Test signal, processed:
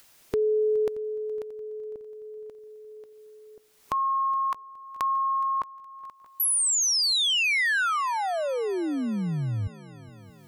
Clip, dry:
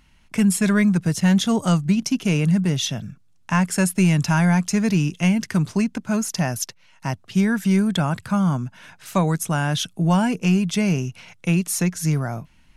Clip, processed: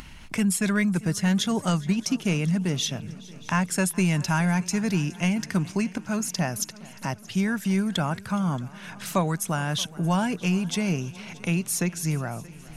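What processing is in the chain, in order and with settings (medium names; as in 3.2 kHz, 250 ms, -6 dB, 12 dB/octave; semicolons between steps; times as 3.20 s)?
upward compressor, threshold -25 dBFS; harmonic-percussive split harmonic -4 dB; multi-head delay 209 ms, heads second and third, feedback 54%, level -21.5 dB; trim -2 dB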